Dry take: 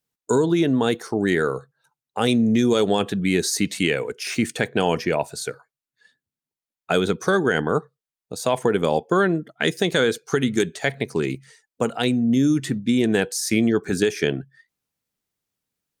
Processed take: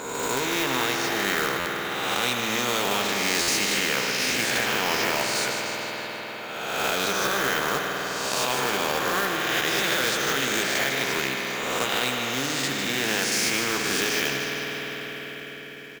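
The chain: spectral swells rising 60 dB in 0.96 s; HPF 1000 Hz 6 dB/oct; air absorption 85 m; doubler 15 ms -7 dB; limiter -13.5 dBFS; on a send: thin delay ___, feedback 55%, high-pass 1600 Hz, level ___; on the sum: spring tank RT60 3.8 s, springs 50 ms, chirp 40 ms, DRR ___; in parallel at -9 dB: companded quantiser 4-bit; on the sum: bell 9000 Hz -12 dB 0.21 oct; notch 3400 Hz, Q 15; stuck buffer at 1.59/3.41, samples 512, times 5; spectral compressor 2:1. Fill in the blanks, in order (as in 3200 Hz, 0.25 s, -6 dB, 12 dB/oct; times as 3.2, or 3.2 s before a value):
0.151 s, -10.5 dB, 4.5 dB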